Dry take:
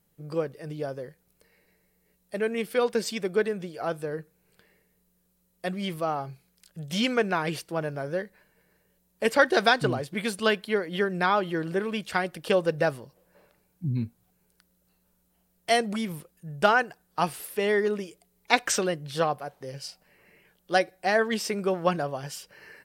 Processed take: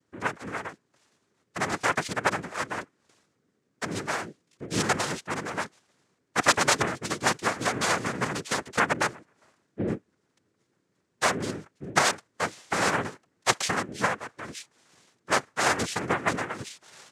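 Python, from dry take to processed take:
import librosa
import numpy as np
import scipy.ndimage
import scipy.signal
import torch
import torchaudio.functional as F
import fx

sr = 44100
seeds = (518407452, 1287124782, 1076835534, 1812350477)

y = fx.speed_glide(x, sr, from_pct=152, to_pct=115)
y = fx.noise_vocoder(y, sr, seeds[0], bands=3)
y = y * 10.0 ** (-1.0 / 20.0)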